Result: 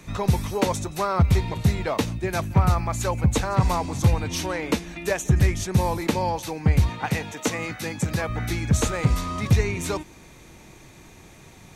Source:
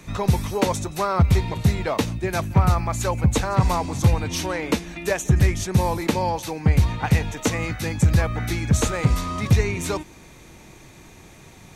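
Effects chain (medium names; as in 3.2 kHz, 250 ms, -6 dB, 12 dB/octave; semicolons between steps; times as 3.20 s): 6.89–8.29 s: Bessel high-pass 190 Hz, order 2; trim -1.5 dB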